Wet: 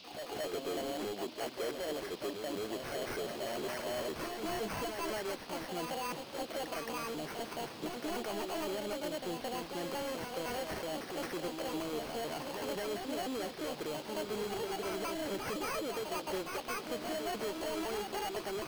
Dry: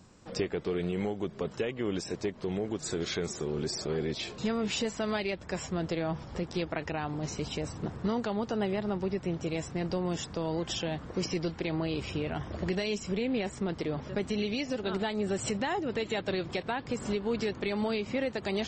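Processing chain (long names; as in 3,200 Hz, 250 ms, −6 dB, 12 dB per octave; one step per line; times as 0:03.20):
pitch shifter gated in a rhythm +7.5 semitones, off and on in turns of 255 ms
high-pass filter 340 Hz 12 dB per octave
high-shelf EQ 4,000 Hz −9 dB
decimation without filtering 12×
gain into a clipping stage and back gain 35 dB
noise in a band 2,300–5,100 Hz −57 dBFS
on a send: backwards echo 219 ms −5 dB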